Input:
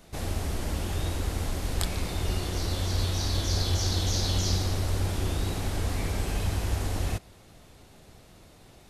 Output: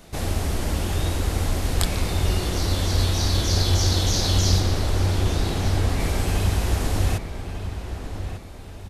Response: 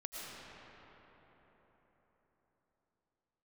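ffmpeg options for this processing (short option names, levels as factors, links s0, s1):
-filter_complex "[0:a]asettb=1/sr,asplit=3[s0][s1][s2];[s0]atrim=end=4.604[s3];[s1]atrim=start=4.6:end=6,asetpts=PTS-STARTPTS,afade=t=in:d=0.004:c=qsin,afade=t=out:st=1.396:d=0.004:c=qsin,highshelf=f=6800:g=-6[s4];[s2]atrim=start=5.996[s5];[s3][s4]acrossfade=d=0.004:c1=hsin:c2=qsin[s6];[s6][s5]acrossfade=d=0.004:c1=qsin:c2=hsin,asplit=2[s7][s8];[s8]adelay=1197,lowpass=f=3000:p=1,volume=0.355,asplit=2[s9][s10];[s10]adelay=1197,lowpass=f=3000:p=1,volume=0.38,asplit=2[s11][s12];[s12]adelay=1197,lowpass=f=3000:p=1,volume=0.38,asplit=2[s13][s14];[s14]adelay=1197,lowpass=f=3000:p=1,volume=0.38[s15];[s9][s11][s13][s15]amix=inputs=4:normalize=0[s16];[s7][s16]amix=inputs=2:normalize=0,volume=2"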